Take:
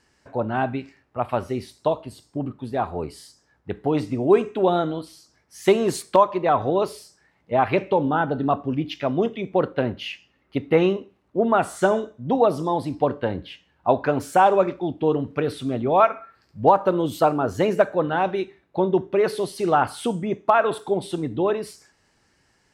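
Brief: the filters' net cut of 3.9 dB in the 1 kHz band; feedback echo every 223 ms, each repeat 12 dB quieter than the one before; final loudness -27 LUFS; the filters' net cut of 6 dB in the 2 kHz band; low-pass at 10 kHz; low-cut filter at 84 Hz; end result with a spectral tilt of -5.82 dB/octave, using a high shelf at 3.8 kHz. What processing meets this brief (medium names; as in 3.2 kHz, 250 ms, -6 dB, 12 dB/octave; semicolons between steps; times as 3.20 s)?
high-pass 84 Hz; low-pass 10 kHz; peaking EQ 1 kHz -4 dB; peaking EQ 2 kHz -8.5 dB; treble shelf 3.8 kHz +5.5 dB; feedback delay 223 ms, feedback 25%, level -12 dB; trim -3 dB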